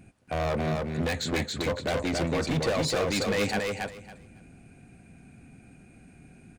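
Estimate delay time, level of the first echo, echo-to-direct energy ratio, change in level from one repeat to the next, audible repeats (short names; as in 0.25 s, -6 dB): 0.277 s, -3.0 dB, -3.0 dB, -15.0 dB, 3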